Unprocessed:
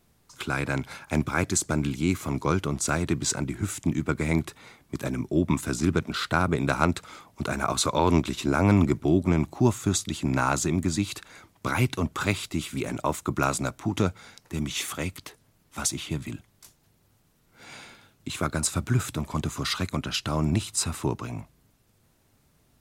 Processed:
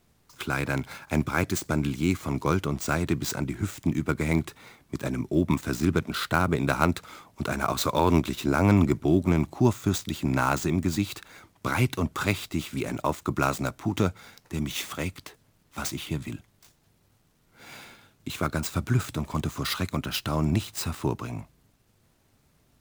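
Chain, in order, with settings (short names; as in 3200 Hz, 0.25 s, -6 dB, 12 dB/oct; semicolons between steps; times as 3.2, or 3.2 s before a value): switching dead time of 0.052 ms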